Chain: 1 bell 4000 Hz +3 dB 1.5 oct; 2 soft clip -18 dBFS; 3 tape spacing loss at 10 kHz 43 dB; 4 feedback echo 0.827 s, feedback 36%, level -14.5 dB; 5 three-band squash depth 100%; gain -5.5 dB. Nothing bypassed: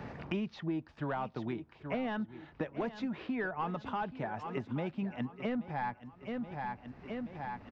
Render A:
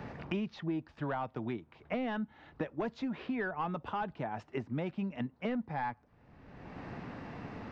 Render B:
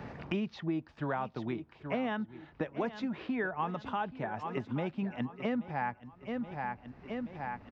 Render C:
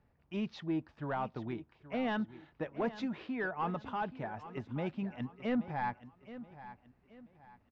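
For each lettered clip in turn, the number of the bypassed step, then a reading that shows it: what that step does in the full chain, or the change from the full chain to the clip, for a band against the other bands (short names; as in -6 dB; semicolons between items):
4, momentary loudness spread change +3 LU; 2, distortion -14 dB; 5, crest factor change -3.5 dB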